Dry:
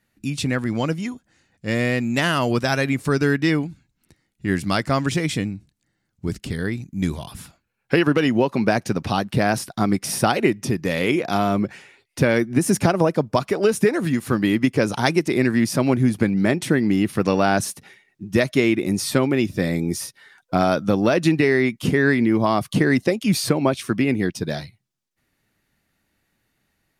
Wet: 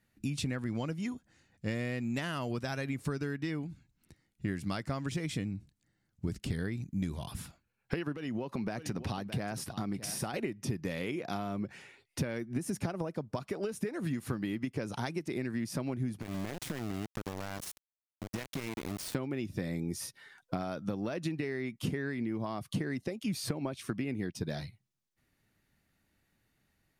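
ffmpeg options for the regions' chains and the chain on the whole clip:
-filter_complex "[0:a]asettb=1/sr,asplit=3[s0][s1][s2];[s0]atrim=end=8.154[s3];[s1]atrim=start=8.15:end=10.34,asetpts=PTS-STARTPTS,afade=t=in:d=0.004:c=qsin,afade=t=out:st=2.186:d=0.004:c=qsin,acompressor=threshold=0.0355:ratio=2:attack=3.2:release=140:knee=1:detection=peak,aecho=1:1:617:0.178,atrim=end_sample=96579[s4];[s2]atrim=start=10.336[s5];[s3][s4]acrossfade=d=0.004:c1=hsin:c2=qsin[s6];[s6][s5]acrossfade=d=0.004:c1=qsin:c2=hsin,asettb=1/sr,asplit=3[s7][s8][s9];[s7]atrim=end=16.214[s10];[s8]atrim=start=16.21:end=19.15,asetpts=PTS-STARTPTS,afade=t=in:d=0.004:c=qsin,afade=t=out:st=2.936:d=0.004:c=qsin,equalizer=f=98:t=o:w=0.44:g=-2.5,acompressor=threshold=0.0398:ratio=6:attack=3.2:release=140:knee=1:detection=peak,aeval=exprs='val(0)*gte(abs(val(0)),0.0335)':c=same[s11];[s9]atrim=start=19.146[s12];[s10][s11]acrossfade=d=0.004:c1=hsin:c2=qsin[s13];[s13][s12]acrossfade=d=0.004:c1=qsin:c2=hsin,lowshelf=f=63:g=-6.5,acompressor=threshold=0.0447:ratio=12,lowshelf=f=140:g=9,volume=0.501"

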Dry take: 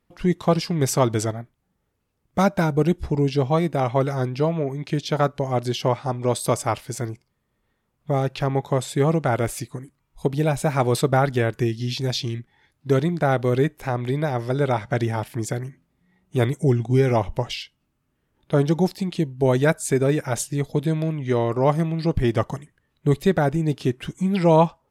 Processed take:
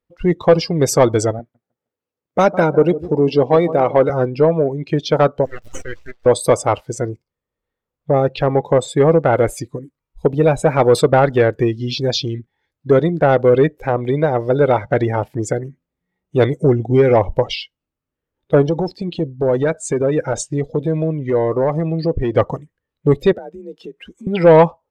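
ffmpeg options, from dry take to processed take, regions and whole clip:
-filter_complex "[0:a]asettb=1/sr,asplit=3[s0][s1][s2];[s0]atrim=end=1.394[s3];[s1]atrim=start=1.39:end=4.1,asetpts=PTS-STARTPTS,afade=t=in:d=0.004:c=qsin,afade=t=out:st=2.706:d=0.004:c=qsin,highpass=160,asplit=2[s4][s5];[s5]adelay=154,lowpass=f=1900:p=1,volume=0.178,asplit=2[s6][s7];[s7]adelay=154,lowpass=f=1900:p=1,volume=0.36,asplit=2[s8][s9];[s9]adelay=154,lowpass=f=1900:p=1,volume=0.36[s10];[s4][s6][s8][s10]amix=inputs=4:normalize=0,atrim=end_sample=119511[s11];[s2]atrim=start=4.096[s12];[s3][s11]acrossfade=d=0.004:c1=hsin:c2=qsin[s13];[s13][s12]acrossfade=d=0.004:c1=qsin:c2=hsin,asettb=1/sr,asplit=3[s14][s15][s16];[s14]atrim=end=5.454[s17];[s15]atrim=start=5.45:end=6.26,asetpts=PTS-STARTPTS,afade=t=in:d=0.004:c=qsin,afade=t=out:st=0.806:d=0.004:c=qsin,highpass=1300,aeval=exprs='abs(val(0))':c=same[s18];[s16]atrim=start=6.256[s19];[s17][s18]acrossfade=d=0.004:c1=hsin:c2=qsin[s20];[s20][s19]acrossfade=d=0.004:c1=qsin:c2=hsin,asettb=1/sr,asplit=3[s21][s22][s23];[s21]atrim=end=18.624[s24];[s22]atrim=start=18.62:end=22.36,asetpts=PTS-STARTPTS,afade=t=in:d=0.004:c=qsin,afade=t=out:st=3.736:d=0.004:c=qsin,lowpass=8200,acompressor=threshold=0.1:ratio=4:attack=3.2:release=140:knee=1:detection=peak,asoftclip=type=hard:threshold=0.106[s25];[s23]atrim=start=22.356[s26];[s24][s25]acrossfade=d=0.004:c1=hsin:c2=qsin[s27];[s27][s26]acrossfade=d=0.004:c1=qsin:c2=hsin,asettb=1/sr,asplit=3[s28][s29][s30];[s28]atrim=end=23.324[s31];[s29]atrim=start=23.32:end=24.27,asetpts=PTS-STARTPTS,afade=t=in:d=0.004:c=qsin,afade=t=out:st=0.946:d=0.004:c=qsin,equalizer=f=71:w=0.64:g=-14.5,acompressor=threshold=0.0158:ratio=8:attack=3.2:release=140:knee=1:detection=peak,afreqshift=38[s32];[s30]atrim=start=24.266[s33];[s31][s32]acrossfade=d=0.004:c1=hsin:c2=qsin[s34];[s34][s33]acrossfade=d=0.004:c1=qsin:c2=hsin,afftdn=nr=18:nf=-35,equalizer=f=125:t=o:w=0.33:g=-5,equalizer=f=200:t=o:w=0.33:g=-7,equalizer=f=500:t=o:w=0.33:g=8,equalizer=f=10000:t=o:w=0.33:g=-7,acontrast=81"

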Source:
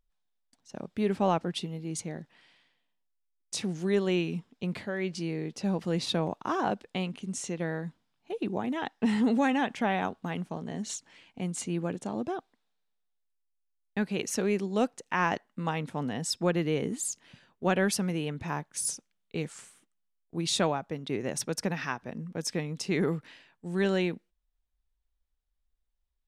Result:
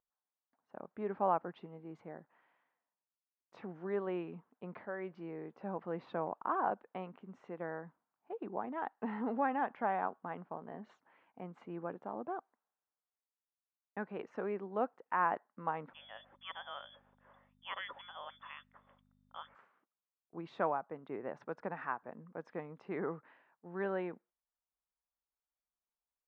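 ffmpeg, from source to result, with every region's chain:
-filter_complex "[0:a]asettb=1/sr,asplit=3[s0][s1][s2];[s0]atrim=end=15.934[s3];[s1]atrim=start=15.93:end=19.55,asetpts=PTS-STARTPTS,afade=t=in:d=0.004:c=qsin,afade=t=out:st=3.616:d=0.004:c=qsin,lowpass=f=3100:t=q:w=0.5098,lowpass=f=3100:t=q:w=0.6013,lowpass=f=3100:t=q:w=0.9,lowpass=f=3100:t=q:w=2.563,afreqshift=-3600,aeval=exprs='val(0)+0.00316*(sin(2*PI*50*n/s)+sin(2*PI*2*50*n/s)/2+sin(2*PI*3*50*n/s)/3+sin(2*PI*4*50*n/s)/4+sin(2*PI*5*50*n/s)/5)':c=same,equalizer=f=550:w=8:g=9.5[s4];[s2]atrim=start=19.546[s5];[s3][s4]acrossfade=d=0.004:c1=hsin:c2=qsin[s6];[s6][s5]acrossfade=d=0.004:c1=qsin:c2=hsin,lowpass=f=1200:w=0.5412,lowpass=f=1200:w=1.3066,aderivative,volume=6.31"

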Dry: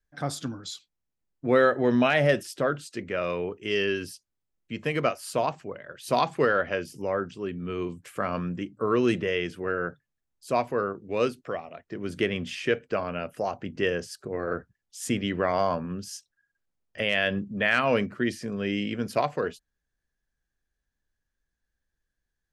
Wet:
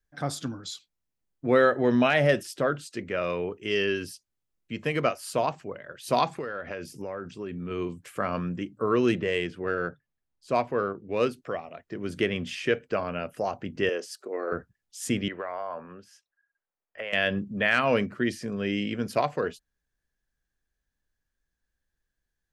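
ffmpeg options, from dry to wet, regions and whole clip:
-filter_complex "[0:a]asettb=1/sr,asplit=3[s0][s1][s2];[s0]atrim=end=6.264[s3];[s1]atrim=start=6.26:end=7.71,asetpts=PTS-STARTPTS,afade=t=in:d=0.004:c=qsin,afade=t=out:st=1.446:d=0.004:c=qsin,bandreject=f=3000:w=13,acompressor=threshold=0.0316:ratio=8:attack=3.2:release=140:knee=1:detection=peak[s4];[s2]atrim=start=7.706[s5];[s3][s4]acrossfade=d=0.004:c1=hsin:c2=qsin[s6];[s6][s5]acrossfade=d=0.004:c1=qsin:c2=hsin,asettb=1/sr,asplit=3[s7][s8][s9];[s7]atrim=end=9.094[s10];[s8]atrim=start=9.09:end=11.31,asetpts=PTS-STARTPTS,afade=t=in:d=0.004:c=qsin,afade=t=out:st=2.216:d=0.004:c=qsin,highshelf=f=6700:g=10.5,adynamicsmooth=sensitivity=1.5:basefreq=3600[s11];[s9]atrim=start=11.306[s12];[s10][s11]acrossfade=d=0.004:c1=hsin:c2=qsin[s13];[s13][s12]acrossfade=d=0.004:c1=qsin:c2=hsin,asettb=1/sr,asplit=3[s14][s15][s16];[s14]atrim=end=13.894[s17];[s15]atrim=start=13.89:end=14.52,asetpts=PTS-STARTPTS,afade=t=in:d=0.004:c=qsin,afade=t=out:st=0.626:d=0.004:c=qsin,highpass=f=300:w=0.5412,highpass=f=300:w=1.3066,bandreject=f=1600:w=11[s18];[s16]atrim=start=14.516[s19];[s17][s18]acrossfade=d=0.004:c1=hsin:c2=qsin[s20];[s20][s19]acrossfade=d=0.004:c1=qsin:c2=hsin,asettb=1/sr,asplit=3[s21][s22][s23];[s21]atrim=end=15.284[s24];[s22]atrim=start=15.28:end=17.13,asetpts=PTS-STARTPTS,afade=t=in:d=0.004:c=qsin,afade=t=out:st=1.846:d=0.004:c=qsin,acrossover=split=430 2400:gain=0.141 1 0.112[s25][s26][s27];[s25][s26][s27]amix=inputs=3:normalize=0,acompressor=threshold=0.0316:ratio=4:attack=3.2:release=140:knee=1:detection=peak[s28];[s23]atrim=start=17.126[s29];[s24][s28]acrossfade=d=0.004:c1=hsin:c2=qsin[s30];[s30][s29]acrossfade=d=0.004:c1=qsin:c2=hsin"

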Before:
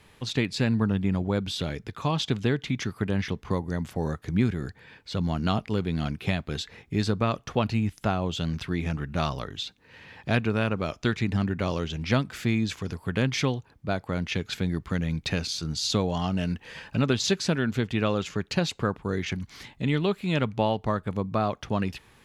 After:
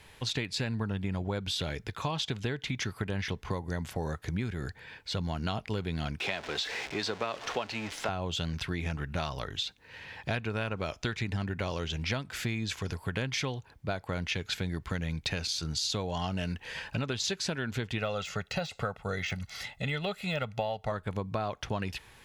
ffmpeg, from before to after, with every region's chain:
-filter_complex "[0:a]asettb=1/sr,asplit=3[s0][s1][s2];[s0]atrim=end=6.204[s3];[s1]atrim=start=6.2:end=8.09,asetpts=PTS-STARTPTS,afade=t=in:d=0.004:c=qsin,afade=t=out:st=1.886:d=0.004:c=qsin,aeval=exprs='val(0)+0.5*0.0237*sgn(val(0))':c=same,acrossover=split=260 6900:gain=0.112 1 0.0794[s4][s5][s6];[s4][s5][s6]amix=inputs=3:normalize=0[s7];[s2]atrim=start=8.086[s8];[s3][s7]acrossfade=d=0.004:c1=hsin:c2=qsin[s9];[s9][s8]acrossfade=d=0.004:c1=qsin:c2=hsin,asettb=1/sr,asplit=3[s10][s11][s12];[s10]atrim=end=17.984[s13];[s11]atrim=start=17.98:end=20.92,asetpts=PTS-STARTPTS,afade=t=in:d=0.004:c=qsin,afade=t=out:st=2.936:d=0.004:c=qsin,lowshelf=f=130:g=-9,aecho=1:1:1.5:0.73,atrim=end_sample=129654,deesser=1[s14];[s12]atrim=start=20.916[s15];[s13][s14]acrossfade=d=0.004:c1=hsin:c2=qsin[s16];[s16][s15]acrossfade=d=0.004:c1=qsin:c2=hsin,equalizer=f=230:w=0.71:g=-7.5,bandreject=f=1200:w=11,acompressor=threshold=0.0251:ratio=6,volume=1.41"

